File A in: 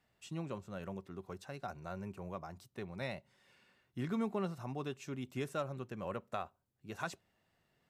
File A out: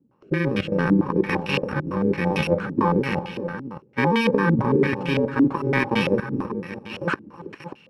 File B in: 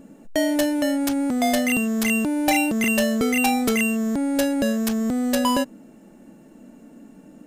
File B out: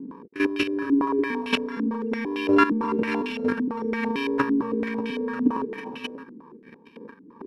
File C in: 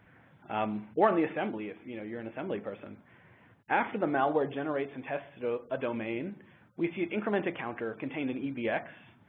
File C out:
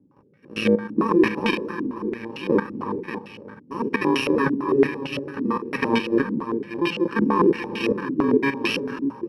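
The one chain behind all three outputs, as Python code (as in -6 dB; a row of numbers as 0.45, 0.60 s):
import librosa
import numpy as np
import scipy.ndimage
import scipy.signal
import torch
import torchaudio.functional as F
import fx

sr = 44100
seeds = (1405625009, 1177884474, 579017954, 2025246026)

p1 = fx.bit_reversed(x, sr, seeds[0], block=64)
p2 = scipy.signal.sosfilt(scipy.signal.butter(2, 180.0, 'highpass', fs=sr, output='sos'), p1)
p3 = fx.rider(p2, sr, range_db=5, speed_s=0.5)
p4 = p2 + (p3 * librosa.db_to_amplitude(2.0))
p5 = fx.transient(p4, sr, attack_db=-4, sustain_db=8)
p6 = fx.level_steps(p5, sr, step_db=13)
p7 = fx.rotary(p6, sr, hz=0.65)
p8 = p7 + fx.echo_multitap(p7, sr, ms=(324, 403, 587), db=(-15.0, -16.5, -10.5), dry=0)
p9 = fx.filter_held_lowpass(p8, sr, hz=8.9, low_hz=290.0, high_hz=2800.0)
y = librosa.util.normalize(p9) * 10.0 ** (-6 / 20.0)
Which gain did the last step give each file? 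+21.0, +0.5, +10.0 dB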